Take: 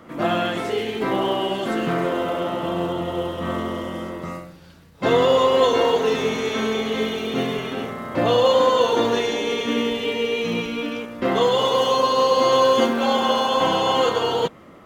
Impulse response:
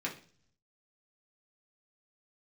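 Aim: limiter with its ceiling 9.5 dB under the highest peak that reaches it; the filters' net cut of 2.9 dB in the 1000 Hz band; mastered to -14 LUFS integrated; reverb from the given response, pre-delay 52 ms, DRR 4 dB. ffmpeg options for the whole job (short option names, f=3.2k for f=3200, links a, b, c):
-filter_complex "[0:a]equalizer=f=1k:t=o:g=-3.5,alimiter=limit=-16dB:level=0:latency=1,asplit=2[a][b];[1:a]atrim=start_sample=2205,adelay=52[c];[b][c]afir=irnorm=-1:irlink=0,volume=-7.5dB[d];[a][d]amix=inputs=2:normalize=0,volume=9.5dB"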